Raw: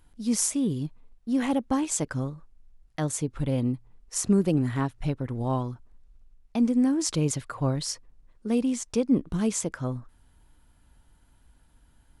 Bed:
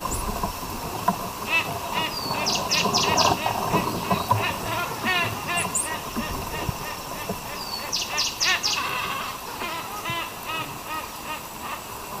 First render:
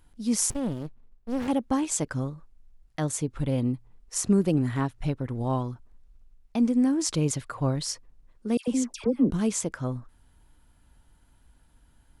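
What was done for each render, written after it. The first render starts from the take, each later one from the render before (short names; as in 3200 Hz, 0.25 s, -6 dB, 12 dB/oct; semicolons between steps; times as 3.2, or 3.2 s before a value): 0.5–1.48 running maximum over 65 samples; 8.57–9.31 dispersion lows, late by 0.107 s, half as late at 1400 Hz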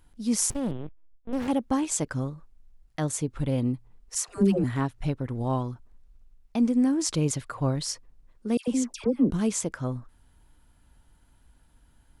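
0.71–1.33 LPC vocoder at 8 kHz pitch kept; 4.15–4.64 dispersion lows, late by 0.136 s, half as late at 550 Hz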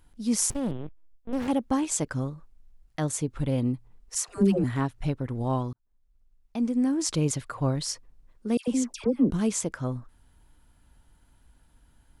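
5.73–7.13 fade in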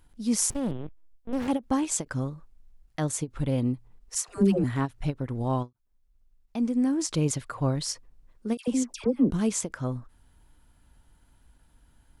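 ending taper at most 420 dB/s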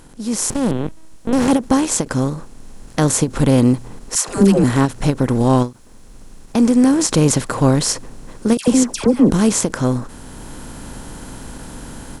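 per-bin compression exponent 0.6; AGC gain up to 11.5 dB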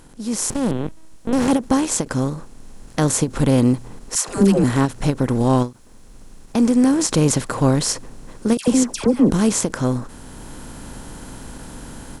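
gain -2.5 dB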